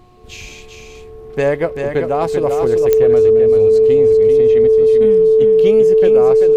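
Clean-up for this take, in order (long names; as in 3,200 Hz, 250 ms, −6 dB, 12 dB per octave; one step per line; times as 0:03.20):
click removal
hum removal 361.8 Hz, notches 3
notch filter 440 Hz, Q 30
echo removal 389 ms −6 dB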